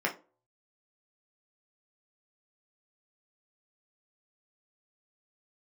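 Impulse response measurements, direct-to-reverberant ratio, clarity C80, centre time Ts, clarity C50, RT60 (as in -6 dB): -1.5 dB, 20.5 dB, 15 ms, 13.5 dB, 0.35 s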